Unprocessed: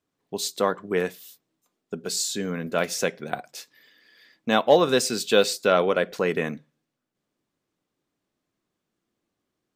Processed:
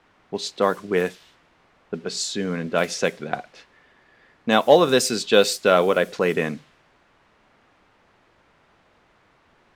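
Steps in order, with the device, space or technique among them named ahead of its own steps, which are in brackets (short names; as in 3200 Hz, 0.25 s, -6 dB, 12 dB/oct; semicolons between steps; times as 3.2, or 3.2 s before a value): cassette deck with a dynamic noise filter (white noise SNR 25 dB; low-pass opened by the level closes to 1500 Hz, open at -19 dBFS); gain +3 dB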